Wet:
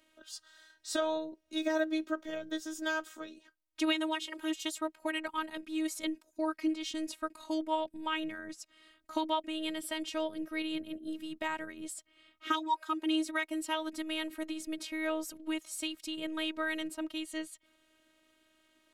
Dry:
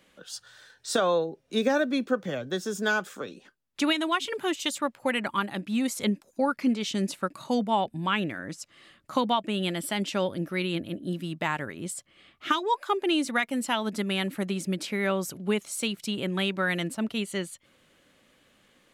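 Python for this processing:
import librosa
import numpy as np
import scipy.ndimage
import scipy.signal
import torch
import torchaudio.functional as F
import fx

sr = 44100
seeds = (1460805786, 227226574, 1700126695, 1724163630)

y = fx.robotise(x, sr, hz=314.0)
y = y * 10.0 ** (-4.5 / 20.0)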